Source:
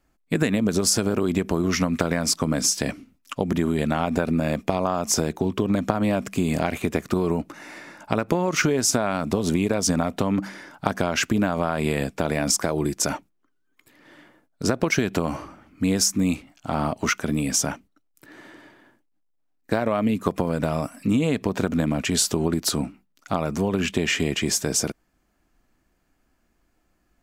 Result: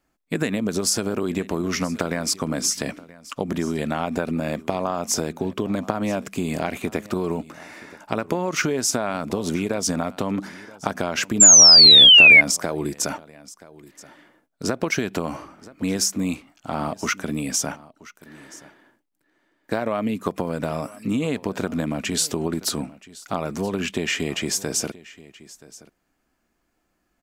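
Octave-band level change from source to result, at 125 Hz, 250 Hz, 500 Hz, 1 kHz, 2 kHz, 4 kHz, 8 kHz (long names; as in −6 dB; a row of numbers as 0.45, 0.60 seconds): −4.0, −2.5, −1.5, −1.0, +8.5, +14.0, +7.5 decibels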